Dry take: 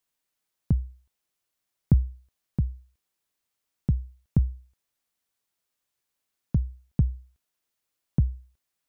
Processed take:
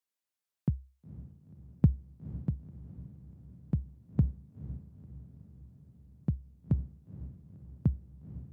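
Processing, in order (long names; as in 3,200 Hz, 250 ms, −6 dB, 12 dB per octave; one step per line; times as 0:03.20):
high-pass filter 57 Hz 24 dB per octave
low-shelf EQ 150 Hz −4.5 dB
feedback delay with all-pass diffusion 508 ms, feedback 62%, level −8 dB
wrong playback speed 24 fps film run at 25 fps
expander for the loud parts 1.5 to 1, over −35 dBFS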